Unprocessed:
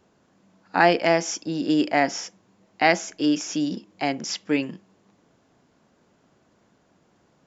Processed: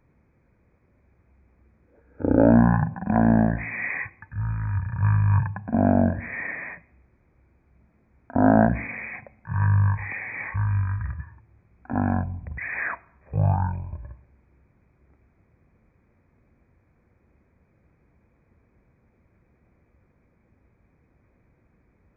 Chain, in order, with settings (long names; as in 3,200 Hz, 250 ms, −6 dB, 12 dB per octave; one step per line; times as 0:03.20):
change of speed 0.337×